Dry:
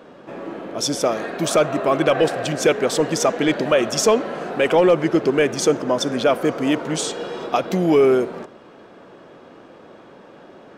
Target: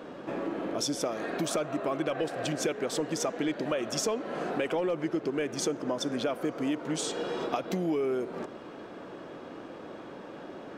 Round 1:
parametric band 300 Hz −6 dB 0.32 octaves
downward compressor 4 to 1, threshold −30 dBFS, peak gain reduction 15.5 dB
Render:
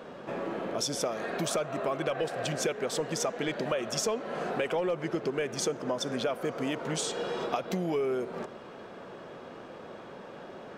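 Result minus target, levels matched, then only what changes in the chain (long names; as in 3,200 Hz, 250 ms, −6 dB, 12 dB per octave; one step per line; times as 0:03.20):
250 Hz band −3.0 dB
change: parametric band 300 Hz +4 dB 0.32 octaves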